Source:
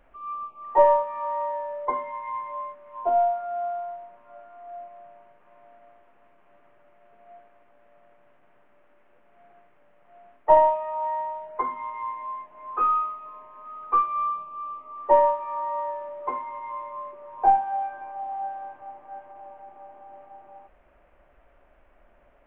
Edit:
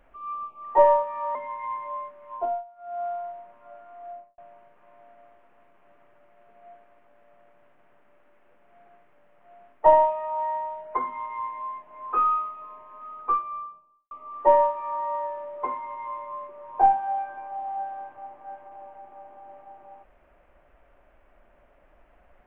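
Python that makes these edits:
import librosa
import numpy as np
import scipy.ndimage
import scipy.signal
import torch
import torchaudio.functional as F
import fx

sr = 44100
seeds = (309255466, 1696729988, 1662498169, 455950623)

y = fx.studio_fade_out(x, sr, start_s=4.72, length_s=0.3)
y = fx.studio_fade_out(y, sr, start_s=13.65, length_s=1.1)
y = fx.edit(y, sr, fx.cut(start_s=1.35, length_s=0.64),
    fx.fade_down_up(start_s=2.97, length_s=0.74, db=-22.0, fade_s=0.31), tone=tone)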